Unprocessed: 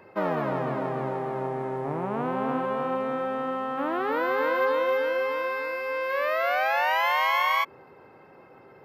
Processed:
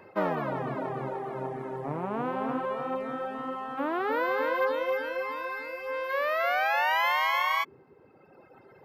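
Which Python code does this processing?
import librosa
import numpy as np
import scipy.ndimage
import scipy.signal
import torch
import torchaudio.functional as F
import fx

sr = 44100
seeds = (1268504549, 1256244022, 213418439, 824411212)

y = fx.dereverb_blind(x, sr, rt60_s=1.4)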